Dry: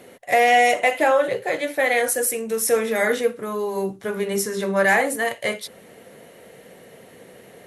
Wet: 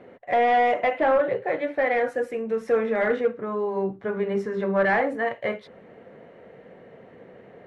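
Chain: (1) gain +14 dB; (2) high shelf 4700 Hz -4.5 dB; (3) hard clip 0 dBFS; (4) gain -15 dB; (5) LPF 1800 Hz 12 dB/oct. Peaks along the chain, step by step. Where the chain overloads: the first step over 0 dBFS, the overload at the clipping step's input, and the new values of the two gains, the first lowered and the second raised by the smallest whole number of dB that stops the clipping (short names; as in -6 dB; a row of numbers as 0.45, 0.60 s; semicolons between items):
+8.5, +8.0, 0.0, -15.0, -14.5 dBFS; step 1, 8.0 dB; step 1 +6 dB, step 4 -7 dB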